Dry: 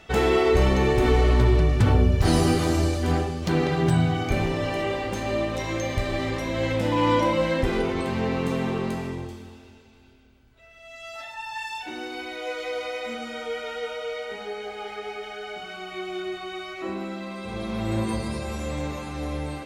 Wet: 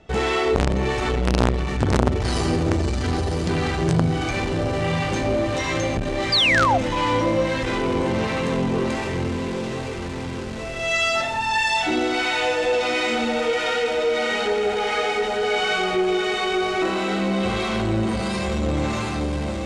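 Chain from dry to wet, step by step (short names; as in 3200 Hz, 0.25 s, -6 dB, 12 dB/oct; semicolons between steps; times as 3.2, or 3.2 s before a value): ending faded out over 0.89 s; recorder AGC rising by 8.4 dB/s; harmonic tremolo 1.5 Hz, depth 70%, crossover 750 Hz; on a send: diffused feedback echo 0.95 s, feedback 50%, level -8 dB; on the sum: painted sound fall, 6.32–6.78, 650–5000 Hz -21 dBFS; in parallel at -9 dB: companded quantiser 2-bit; on the sum: LPF 8700 Hz 24 dB/oct; core saturation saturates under 560 Hz; gain +2 dB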